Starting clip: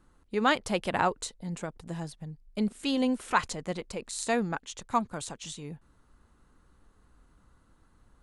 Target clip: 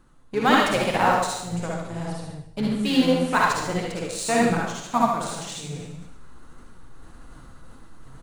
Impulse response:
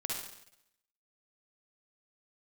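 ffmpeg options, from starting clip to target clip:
-filter_complex "[0:a]asplit=2[a][b];[b]asetrate=29433,aresample=44100,atempo=1.49831,volume=-13dB[c];[a][c]amix=inputs=2:normalize=0,asplit=2[d][e];[e]acrusher=bits=4:mix=0:aa=0.5,volume=-6dB[f];[d][f]amix=inputs=2:normalize=0,aecho=1:1:76:0.355[g];[1:a]atrim=start_sample=2205[h];[g][h]afir=irnorm=-1:irlink=0,flanger=delay=3.5:depth=5.4:regen=64:speed=1.8:shape=triangular,areverse,acompressor=mode=upward:threshold=-35dB:ratio=2.5,areverse,volume=5.5dB"

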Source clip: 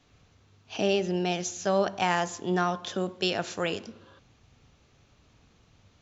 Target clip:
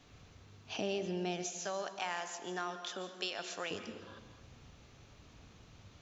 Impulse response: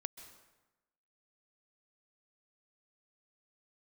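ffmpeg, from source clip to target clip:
-filter_complex "[0:a]asettb=1/sr,asplit=3[a][b][c];[a]atrim=end=1.464[d];[b]atrim=start=1.46:end=3.71,asetpts=PTS-STARTPTS,afade=t=in:d=0.004:c=qsin,afade=t=out:st=2.246:d=0.004:c=qsin,highpass=f=970:p=1[e];[c]atrim=start=3.706[f];[d][e]acrossfade=d=0.004:c1=hsin:c2=qsin[g];[g][f]acrossfade=d=0.004:c1=qsin:c2=hsin,acompressor=threshold=-47dB:ratio=2[h];[1:a]atrim=start_sample=2205[i];[h][i]afir=irnorm=-1:irlink=0,volume=5.5dB"

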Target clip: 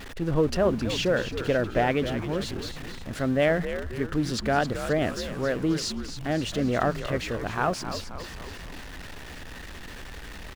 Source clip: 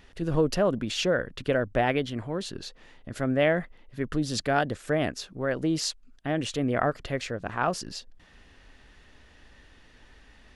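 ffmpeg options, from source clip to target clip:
-filter_complex "[0:a]aeval=exprs='val(0)+0.5*0.0168*sgn(val(0))':c=same,highshelf=f=5.8k:g=-7,asplit=2[a][b];[b]asplit=6[c][d][e][f][g][h];[c]adelay=266,afreqshift=-93,volume=-10dB[i];[d]adelay=532,afreqshift=-186,volume=-15dB[j];[e]adelay=798,afreqshift=-279,volume=-20.1dB[k];[f]adelay=1064,afreqshift=-372,volume=-25.1dB[l];[g]adelay=1330,afreqshift=-465,volume=-30.1dB[m];[h]adelay=1596,afreqshift=-558,volume=-35.2dB[n];[i][j][k][l][m][n]amix=inputs=6:normalize=0[o];[a][o]amix=inputs=2:normalize=0"

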